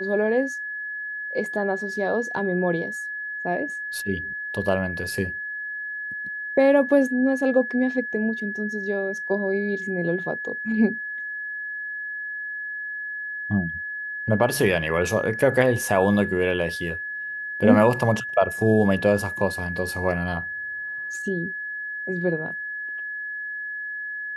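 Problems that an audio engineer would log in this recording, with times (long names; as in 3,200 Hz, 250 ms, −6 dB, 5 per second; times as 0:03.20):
whistle 1,700 Hz −29 dBFS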